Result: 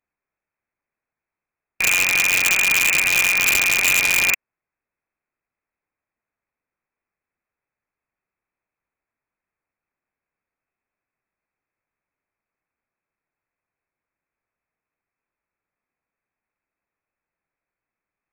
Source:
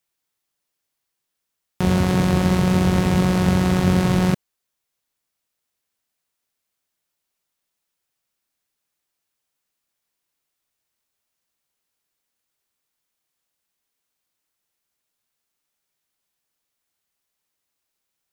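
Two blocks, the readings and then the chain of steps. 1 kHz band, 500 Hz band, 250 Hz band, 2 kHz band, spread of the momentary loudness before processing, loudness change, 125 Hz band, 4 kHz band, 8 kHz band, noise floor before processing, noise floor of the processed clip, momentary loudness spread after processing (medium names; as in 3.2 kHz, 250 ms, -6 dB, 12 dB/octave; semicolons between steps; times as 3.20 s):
-4.5 dB, -12.0 dB, -23.0 dB, +15.5 dB, 4 LU, +3.5 dB, -24.5 dB, +9.0 dB, +15.5 dB, -80 dBFS, under -85 dBFS, 4 LU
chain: frequency inversion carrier 2.6 kHz; integer overflow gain 10 dB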